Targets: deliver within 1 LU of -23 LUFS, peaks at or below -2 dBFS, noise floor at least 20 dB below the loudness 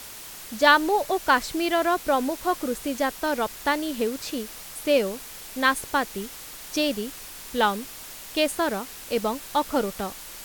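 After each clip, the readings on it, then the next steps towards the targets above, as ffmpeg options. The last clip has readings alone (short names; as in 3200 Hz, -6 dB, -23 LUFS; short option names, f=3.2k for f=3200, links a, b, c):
noise floor -41 dBFS; noise floor target -45 dBFS; loudness -25.0 LUFS; peak -3.0 dBFS; loudness target -23.0 LUFS
-> -af "afftdn=nr=6:nf=-41"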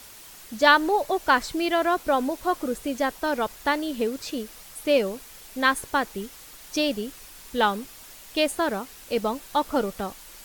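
noise floor -46 dBFS; loudness -25.0 LUFS; peak -3.0 dBFS; loudness target -23.0 LUFS
-> -af "volume=2dB,alimiter=limit=-2dB:level=0:latency=1"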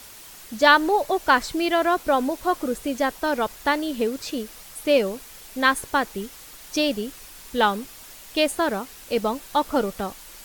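loudness -23.0 LUFS; peak -2.0 dBFS; noise floor -44 dBFS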